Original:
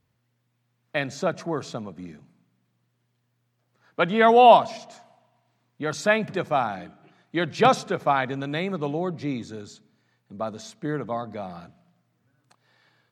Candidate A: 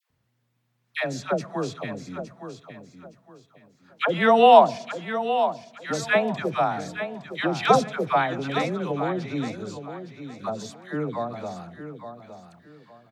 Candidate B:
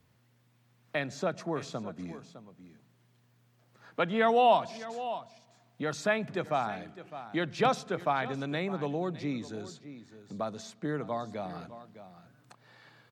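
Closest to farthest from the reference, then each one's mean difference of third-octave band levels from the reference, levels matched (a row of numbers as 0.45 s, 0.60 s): B, A; 3.5 dB, 6.5 dB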